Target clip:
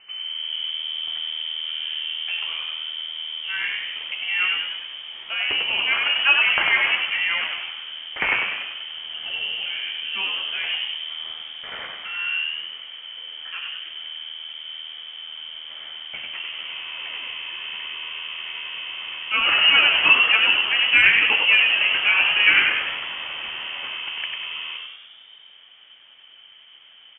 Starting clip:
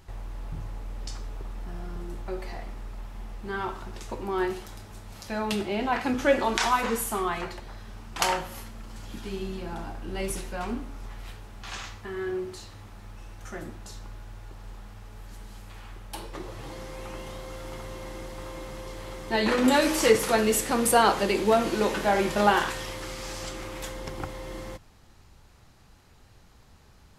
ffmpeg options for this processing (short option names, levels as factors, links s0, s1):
-filter_complex "[0:a]lowpass=f=2600:t=q:w=0.5098,lowpass=f=2600:t=q:w=0.6013,lowpass=f=2600:t=q:w=0.9,lowpass=f=2600:t=q:w=2.563,afreqshift=-3100,asplit=9[s0][s1][s2][s3][s4][s5][s6][s7][s8];[s1]adelay=97,afreqshift=79,volume=0.668[s9];[s2]adelay=194,afreqshift=158,volume=0.389[s10];[s3]adelay=291,afreqshift=237,volume=0.224[s11];[s4]adelay=388,afreqshift=316,volume=0.13[s12];[s5]adelay=485,afreqshift=395,volume=0.0759[s13];[s6]adelay=582,afreqshift=474,volume=0.0437[s14];[s7]adelay=679,afreqshift=553,volume=0.0254[s15];[s8]adelay=776,afreqshift=632,volume=0.0148[s16];[s0][s9][s10][s11][s12][s13][s14][s15][s16]amix=inputs=9:normalize=0,volume=1.5"